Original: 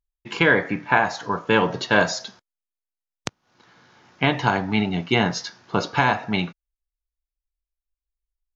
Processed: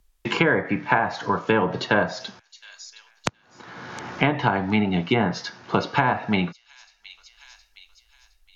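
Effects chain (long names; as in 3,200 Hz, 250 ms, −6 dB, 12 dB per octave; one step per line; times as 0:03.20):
delay with a high-pass on its return 715 ms, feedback 31%, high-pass 5,300 Hz, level −19 dB
treble cut that deepens with the level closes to 1,700 Hz, closed at −15 dBFS
multiband upward and downward compressor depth 70%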